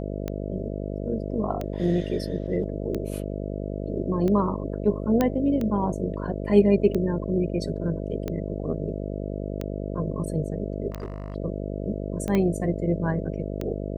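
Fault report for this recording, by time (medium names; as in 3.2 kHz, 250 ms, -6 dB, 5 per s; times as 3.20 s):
buzz 50 Hz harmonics 13 -31 dBFS
tick 45 rpm -17 dBFS
5.21 s: pop -9 dBFS
10.90–11.36 s: clipped -28.5 dBFS
12.35 s: pop -13 dBFS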